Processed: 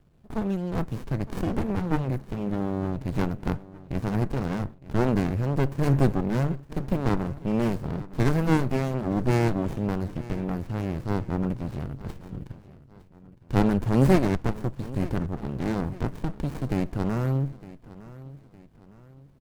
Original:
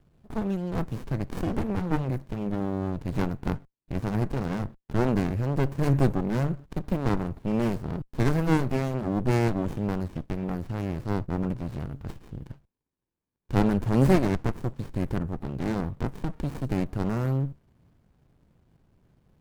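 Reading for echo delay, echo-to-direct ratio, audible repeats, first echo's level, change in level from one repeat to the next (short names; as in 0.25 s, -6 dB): 0.91 s, -17.0 dB, 3, -18.0 dB, -7.5 dB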